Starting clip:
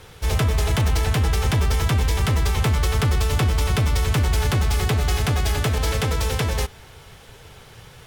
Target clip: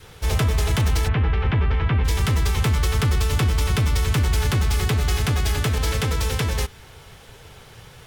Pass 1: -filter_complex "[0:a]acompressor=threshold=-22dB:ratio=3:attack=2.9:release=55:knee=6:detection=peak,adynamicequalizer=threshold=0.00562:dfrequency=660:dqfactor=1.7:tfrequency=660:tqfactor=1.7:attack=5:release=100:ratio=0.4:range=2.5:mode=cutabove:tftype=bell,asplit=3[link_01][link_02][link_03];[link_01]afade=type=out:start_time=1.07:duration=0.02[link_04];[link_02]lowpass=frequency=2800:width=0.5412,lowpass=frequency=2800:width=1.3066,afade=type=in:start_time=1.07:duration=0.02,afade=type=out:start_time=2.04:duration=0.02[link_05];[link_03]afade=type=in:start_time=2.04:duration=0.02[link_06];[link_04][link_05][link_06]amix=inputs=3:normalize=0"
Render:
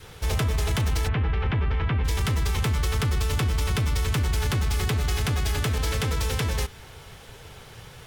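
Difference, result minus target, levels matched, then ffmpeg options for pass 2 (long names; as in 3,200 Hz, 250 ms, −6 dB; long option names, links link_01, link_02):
downward compressor: peak gain reduction +5.5 dB
-filter_complex "[0:a]adynamicequalizer=threshold=0.00562:dfrequency=660:dqfactor=1.7:tfrequency=660:tqfactor=1.7:attack=5:release=100:ratio=0.4:range=2.5:mode=cutabove:tftype=bell,asplit=3[link_01][link_02][link_03];[link_01]afade=type=out:start_time=1.07:duration=0.02[link_04];[link_02]lowpass=frequency=2800:width=0.5412,lowpass=frequency=2800:width=1.3066,afade=type=in:start_time=1.07:duration=0.02,afade=type=out:start_time=2.04:duration=0.02[link_05];[link_03]afade=type=in:start_time=2.04:duration=0.02[link_06];[link_04][link_05][link_06]amix=inputs=3:normalize=0"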